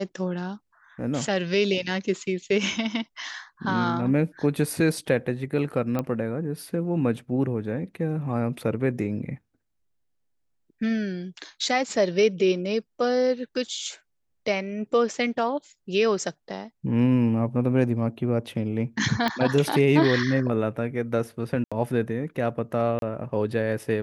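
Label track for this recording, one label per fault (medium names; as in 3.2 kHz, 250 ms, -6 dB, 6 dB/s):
5.990000	5.990000	pop -14 dBFS
19.280000	19.280000	pop -12 dBFS
21.640000	21.720000	dropout 76 ms
22.990000	23.020000	dropout 32 ms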